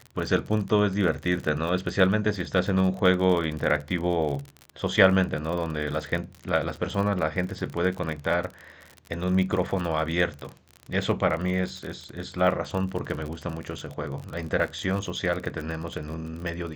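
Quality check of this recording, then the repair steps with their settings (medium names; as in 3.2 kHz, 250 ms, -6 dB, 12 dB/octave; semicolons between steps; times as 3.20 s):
crackle 45 per s -31 dBFS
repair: de-click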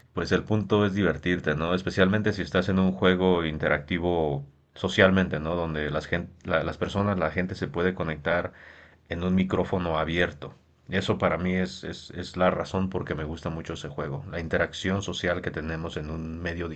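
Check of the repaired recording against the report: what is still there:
nothing left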